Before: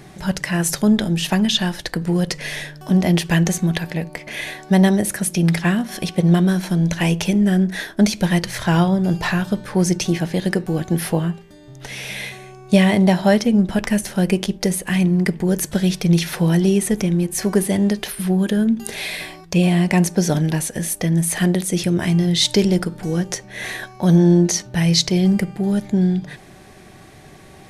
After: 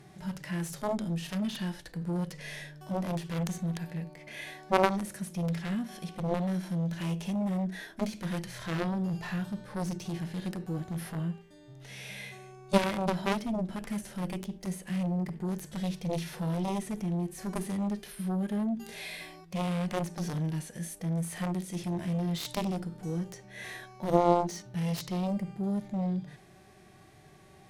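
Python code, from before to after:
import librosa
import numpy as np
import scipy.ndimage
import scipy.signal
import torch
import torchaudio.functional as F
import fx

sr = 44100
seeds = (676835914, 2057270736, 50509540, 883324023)

y = fx.cheby_harmonics(x, sr, harmonics=(3,), levels_db=(-7,), full_scale_db=-2.0)
y = fx.hpss(y, sr, part='percussive', gain_db=-13)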